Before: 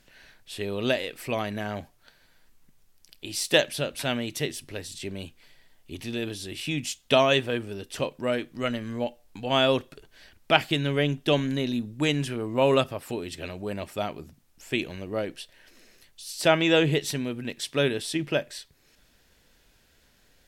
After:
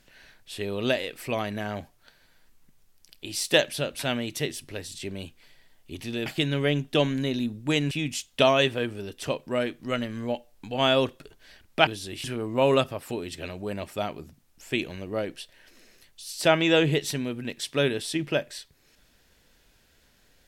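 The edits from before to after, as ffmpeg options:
-filter_complex "[0:a]asplit=5[a][b][c][d][e];[a]atrim=end=6.262[f];[b]atrim=start=10.588:end=12.242[g];[c]atrim=start=6.628:end=10.592[h];[d]atrim=start=6.258:end=6.632[i];[e]atrim=start=12.238[j];[f][g]acrossfade=d=0.004:c1=hsin:c2=hsin[k];[k][h]acrossfade=d=0.004:c1=hsin:c2=hsin[l];[l][i]acrossfade=d=0.004:c1=hsin:c2=hsin[m];[m][j]acrossfade=d=0.004:c1=hsin:c2=hsin"

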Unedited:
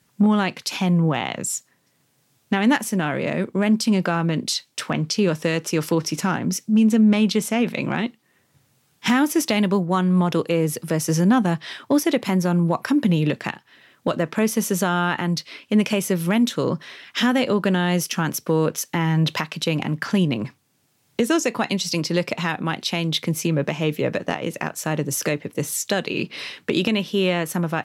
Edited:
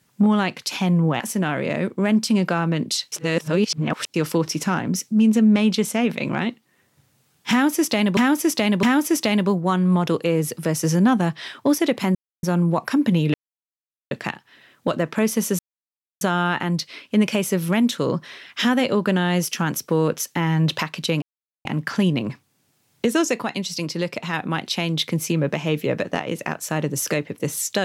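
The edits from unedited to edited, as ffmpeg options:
-filter_complex "[0:a]asplit=12[a][b][c][d][e][f][g][h][i][j][k][l];[a]atrim=end=1.202[m];[b]atrim=start=2.768:end=4.692[n];[c]atrim=start=4.688:end=5.712,asetpts=PTS-STARTPTS,areverse[o];[d]atrim=start=5.708:end=9.742[p];[e]atrim=start=9.078:end=9.742[q];[f]atrim=start=9.078:end=12.4,asetpts=PTS-STARTPTS,afade=t=out:st=3.318:d=0.004:c=hsin,apad=pad_dur=0.28[r];[g]atrim=start=12.4:end=13.31,asetpts=PTS-STARTPTS,afade=t=in:d=0.004:c=hsin,afade=t=out:st=0.906:d=0.004:c=hsin,apad=pad_dur=0.77[s];[h]atrim=start=13.31:end=14.79,asetpts=PTS-STARTPTS,afade=t=in:d=0.004:c=hsin,afade=t=out:st=1.476:d=0.004:c=hsin,apad=pad_dur=0.62[t];[i]atrim=start=14.79:end=19.8,asetpts=PTS-STARTPTS,afade=t=in:d=0.004:c=hsin,afade=t=out:st=5.006:d=0.004:c=hsin,apad=pad_dur=0.43[u];[j]atrim=start=19.8:end=21.572,asetpts=PTS-STARTPTS,afade=t=in:d=0.004:c=hsin[v];[k]atrim=start=21.568:end=22.482,asetpts=PTS-STARTPTS,volume=-3.5dB[w];[l]atrim=start=22.478[x];[m][n]acrossfade=d=0.004:c1=hsin:c2=hsin[y];[y][o]acrossfade=d=0.004:c1=hsin:c2=hsin[z];[z][p]acrossfade=d=0.004:c1=hsin:c2=hsin[aa];[aa][q]acrossfade=d=0.004:c1=hsin:c2=hsin[ab];[r][s][t][u][v]concat=n=5:v=0:a=1[ac];[ab][ac]acrossfade=d=0.004:c1=hsin:c2=hsin[ad];[ad][w]acrossfade=d=0.004:c1=hsin:c2=hsin[ae];[ae][x]acrossfade=d=0.004:c1=hsin:c2=hsin"

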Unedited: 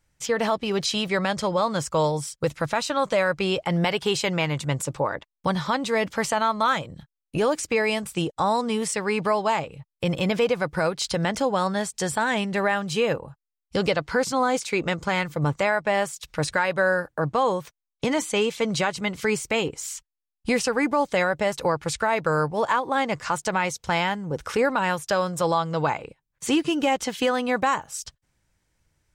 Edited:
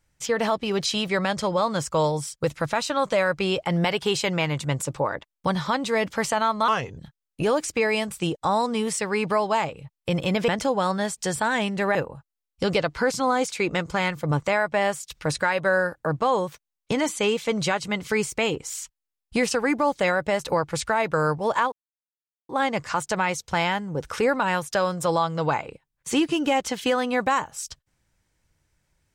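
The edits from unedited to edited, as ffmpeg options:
-filter_complex "[0:a]asplit=6[a][b][c][d][e][f];[a]atrim=end=6.684[g];[b]atrim=start=6.68:end=6.93,asetpts=PTS-STARTPTS,asetrate=36603,aresample=44100,atrim=end_sample=13283,asetpts=PTS-STARTPTS[h];[c]atrim=start=6.926:end=10.432[i];[d]atrim=start=11.238:end=12.712[j];[e]atrim=start=13.078:end=22.85,asetpts=PTS-STARTPTS,afade=t=out:st=9.768:d=0.004:c=hsin,apad=pad_dur=0.77[k];[f]atrim=start=22.85,asetpts=PTS-STARTPTS,afade=t=in:d=0.004:c=hsin[l];[g][h]acrossfade=d=0.004:c1=hsin:c2=hsin[m];[m][i]acrossfade=d=0.004:c1=hsin:c2=hsin[n];[n][j]acrossfade=d=0.004:c1=hsin:c2=hsin[o];[k][l]concat=n=2:v=0:a=1[p];[o][p]acrossfade=d=0.004:c1=hsin:c2=hsin"

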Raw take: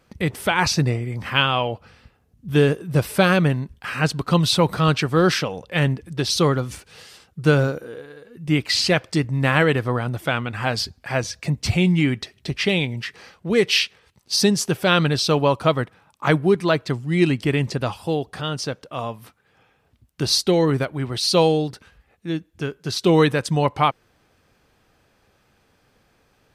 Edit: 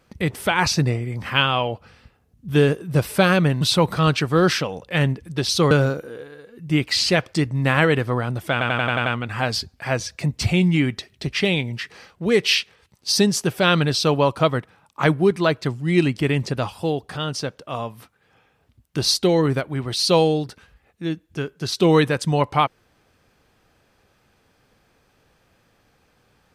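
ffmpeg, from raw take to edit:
-filter_complex "[0:a]asplit=9[a][b][c][d][e][f][g][h][i];[a]atrim=end=3.612[j];[b]atrim=start=4.418:end=6.522[k];[c]atrim=start=7.488:end=10.392[l];[d]atrim=start=10.298:end=10.392[m];[e]atrim=start=10.298:end=10.392[n];[f]atrim=start=10.298:end=10.392[o];[g]atrim=start=10.298:end=10.392[p];[h]atrim=start=10.298:end=10.392[q];[i]atrim=start=10.298[r];[j][k]acrossfade=d=0.004:c1=hsin:c2=hsin[s];[s][l]acrossfade=d=0.004:c1=hsin:c2=hsin[t];[t][m]acrossfade=d=0.004:c1=hsin:c2=hsin[u];[u][n]acrossfade=d=0.004:c1=hsin:c2=hsin[v];[v][o]acrossfade=d=0.004:c1=hsin:c2=hsin[w];[w][p]acrossfade=d=0.004:c1=hsin:c2=hsin[x];[x][q]acrossfade=d=0.004:c1=hsin:c2=hsin[y];[y][r]acrossfade=d=0.004:c1=hsin:c2=hsin"

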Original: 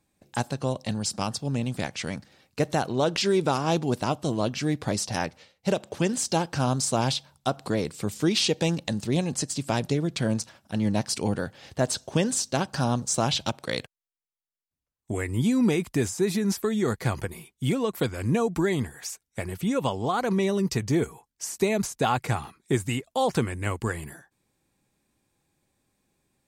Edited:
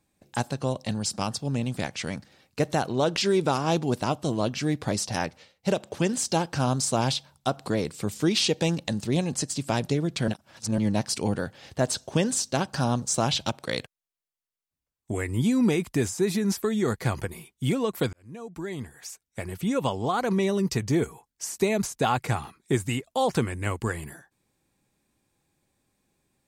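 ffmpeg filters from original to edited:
-filter_complex "[0:a]asplit=4[a][b][c][d];[a]atrim=end=10.282[e];[b]atrim=start=10.278:end=10.782,asetpts=PTS-STARTPTS,areverse[f];[c]atrim=start=10.778:end=18.13,asetpts=PTS-STARTPTS,afade=t=out:st=7.348:d=0.004:c=hsin[g];[d]atrim=start=18.13,asetpts=PTS-STARTPTS,afade=t=in:d=1.63[h];[e][f]acrossfade=d=0.004:c1=hsin:c2=hsin[i];[g][h]concat=n=2:v=0:a=1[j];[i][j]acrossfade=d=0.004:c1=hsin:c2=hsin"

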